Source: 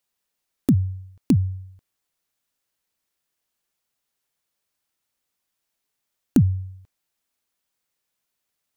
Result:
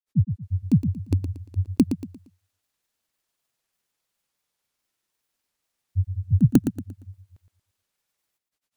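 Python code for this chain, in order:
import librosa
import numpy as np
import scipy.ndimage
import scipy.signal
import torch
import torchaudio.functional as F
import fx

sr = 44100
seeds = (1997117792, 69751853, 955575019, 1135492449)

p1 = fx.granulator(x, sr, seeds[0], grain_ms=100.0, per_s=20.0, spray_ms=587.0, spread_st=0)
p2 = p1 + fx.echo_feedback(p1, sr, ms=116, feedback_pct=33, wet_db=-9, dry=0)
y = p2 * 10.0 ** (2.0 / 20.0)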